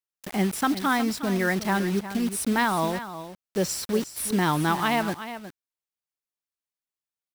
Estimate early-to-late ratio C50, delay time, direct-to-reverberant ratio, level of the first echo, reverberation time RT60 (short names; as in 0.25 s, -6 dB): none, 0.362 s, none, -12.0 dB, none